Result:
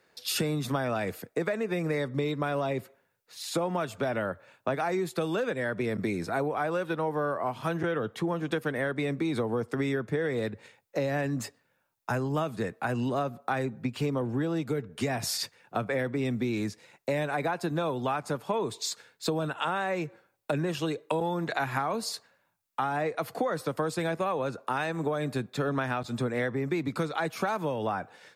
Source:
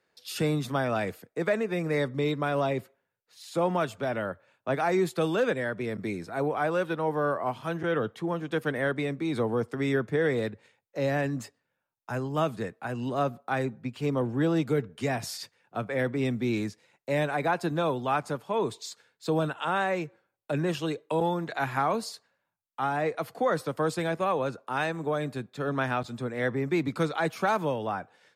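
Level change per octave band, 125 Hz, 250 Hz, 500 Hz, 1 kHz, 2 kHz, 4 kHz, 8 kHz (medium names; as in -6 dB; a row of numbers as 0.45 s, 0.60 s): -1.0 dB, -1.0 dB, -2.0 dB, -1.5 dB, -1.5 dB, +2.0 dB, +5.0 dB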